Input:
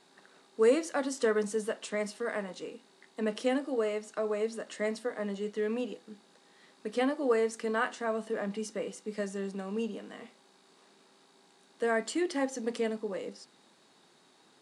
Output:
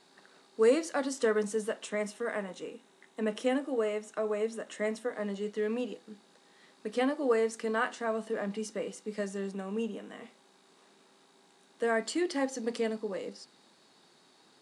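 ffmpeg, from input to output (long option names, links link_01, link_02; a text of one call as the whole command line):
ffmpeg -i in.wav -af "asetnsamples=nb_out_samples=441:pad=0,asendcmd='1.13 equalizer g -3;1.85 equalizer g -10;5.13 equalizer g -0.5;9.53 equalizer g -11.5;10.23 equalizer g -2.5;12.03 equalizer g 4',equalizer=frequency=4600:width_type=o:width=0.26:gain=3" out.wav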